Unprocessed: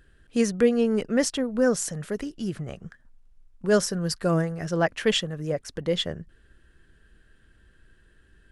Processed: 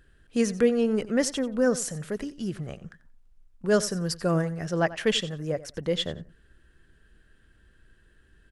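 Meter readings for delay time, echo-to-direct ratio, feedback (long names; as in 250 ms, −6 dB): 90 ms, −17.0 dB, 17%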